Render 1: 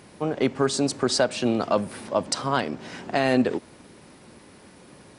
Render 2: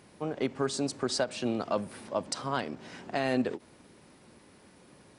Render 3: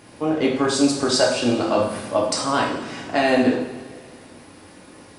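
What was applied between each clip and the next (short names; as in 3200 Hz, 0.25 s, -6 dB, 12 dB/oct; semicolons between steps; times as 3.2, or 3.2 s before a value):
ending taper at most 410 dB/s; gain -7.5 dB
two-slope reverb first 0.72 s, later 2.5 s, from -17 dB, DRR -3 dB; gain +7.5 dB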